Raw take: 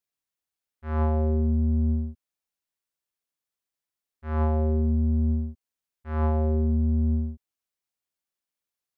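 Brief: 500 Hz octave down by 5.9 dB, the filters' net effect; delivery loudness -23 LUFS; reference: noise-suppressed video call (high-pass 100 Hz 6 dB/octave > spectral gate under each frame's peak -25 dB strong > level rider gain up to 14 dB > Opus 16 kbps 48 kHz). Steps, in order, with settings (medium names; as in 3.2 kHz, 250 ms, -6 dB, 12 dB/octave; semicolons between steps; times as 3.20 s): high-pass 100 Hz 6 dB/octave; peaking EQ 500 Hz -8 dB; spectral gate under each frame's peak -25 dB strong; level rider gain up to 14 dB; trim +6.5 dB; Opus 16 kbps 48 kHz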